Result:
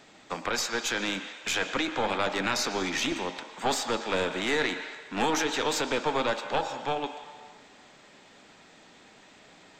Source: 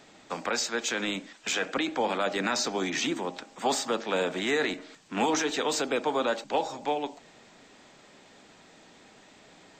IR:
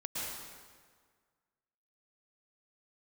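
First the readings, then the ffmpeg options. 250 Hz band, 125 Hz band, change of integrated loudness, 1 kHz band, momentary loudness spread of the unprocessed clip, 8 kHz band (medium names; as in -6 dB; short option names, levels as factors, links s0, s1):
-1.0 dB, +2.5 dB, 0.0 dB, +0.5 dB, 7 LU, -0.5 dB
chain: -filter_complex "[0:a]aeval=exprs='0.188*(cos(1*acos(clip(val(0)/0.188,-1,1)))-cos(1*PI/2))+0.075*(cos(2*acos(clip(val(0)/0.188,-1,1)))-cos(2*PI/2))+0.00376*(cos(5*acos(clip(val(0)/0.188,-1,1)))-cos(5*PI/2))':c=same,asplit=2[s0][s1];[s1]highpass=730,lowpass=4000[s2];[1:a]atrim=start_sample=2205,highshelf=f=4800:g=6.5[s3];[s2][s3]afir=irnorm=-1:irlink=0,volume=0.355[s4];[s0][s4]amix=inputs=2:normalize=0,volume=0.841"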